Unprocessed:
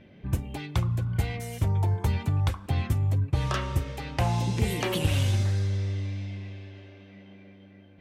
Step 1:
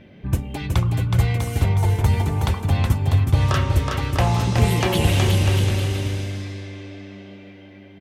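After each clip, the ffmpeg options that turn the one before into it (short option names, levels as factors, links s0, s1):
-af "aecho=1:1:370|647.5|855.6|1012|1129:0.631|0.398|0.251|0.158|0.1,volume=2"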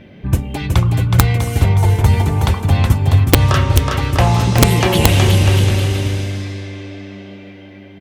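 -af "aeval=exprs='(mod(2.37*val(0)+1,2)-1)/2.37':c=same,volume=2"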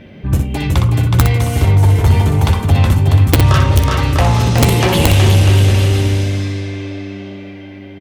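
-filter_complex "[0:a]acontrast=70,asplit=2[s0][s1];[s1]aecho=0:1:13|61:0.299|0.473[s2];[s0][s2]amix=inputs=2:normalize=0,volume=0.596"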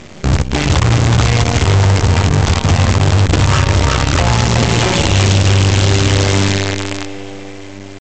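-af "alimiter=limit=0.251:level=0:latency=1:release=202,aresample=16000,acrusher=bits=4:dc=4:mix=0:aa=0.000001,aresample=44100,volume=1.88"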